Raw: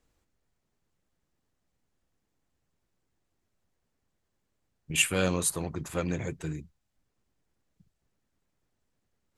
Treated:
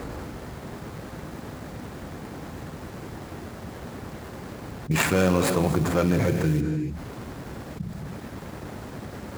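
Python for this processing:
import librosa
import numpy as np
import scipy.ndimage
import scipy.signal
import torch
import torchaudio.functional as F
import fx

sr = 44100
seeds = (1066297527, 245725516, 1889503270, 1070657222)

y = scipy.ndimage.median_filter(x, 15, mode='constant')
y = scipy.signal.sosfilt(scipy.signal.butter(2, 72.0, 'highpass', fs=sr, output='sos'), y)
y = fx.rev_gated(y, sr, seeds[0], gate_ms=320, shape='flat', drr_db=10.5)
y = fx.quant_companded(y, sr, bits=6, at=(4.91, 6.61))
y = fx.env_flatten(y, sr, amount_pct=70)
y = F.gain(torch.from_numpy(y), 6.0).numpy()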